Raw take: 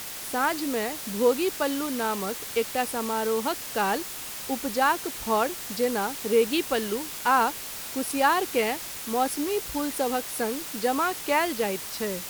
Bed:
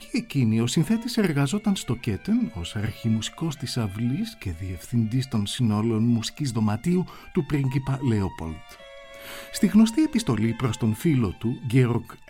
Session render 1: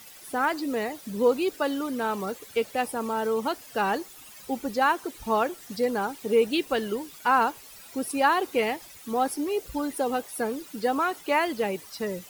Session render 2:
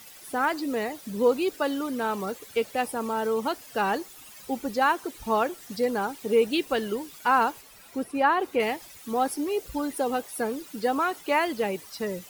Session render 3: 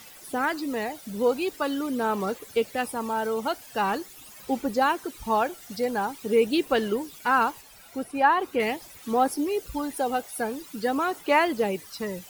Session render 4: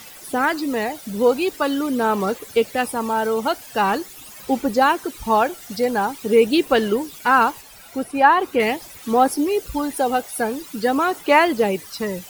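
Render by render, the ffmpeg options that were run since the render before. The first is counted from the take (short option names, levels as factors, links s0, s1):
-af "afftdn=nr=14:nf=-37"
-filter_complex "[0:a]asettb=1/sr,asplit=3[s0][s1][s2];[s0]atrim=end=7.614[s3];[s1]atrim=start=7.61:end=8.6,asetpts=PTS-STARTPTS,afade=t=in:d=0.004:c=qsin,afade=t=out:st=0.986:d=0.004:c=qsin,acrossover=split=2700[s4][s5];[s5]acompressor=threshold=0.00398:ratio=4:attack=1:release=60[s6];[s4][s6]amix=inputs=2:normalize=0[s7];[s2]atrim=start=8.596[s8];[s3][s7]acrossfade=d=0.004:c1=hsin:c2=qsin[s9];[s9][s8]acrossfade=d=0.004:c1=qsin:c2=hsin"
-af "aphaser=in_gain=1:out_gain=1:delay=1.4:decay=0.31:speed=0.44:type=sinusoidal"
-af "volume=2.11"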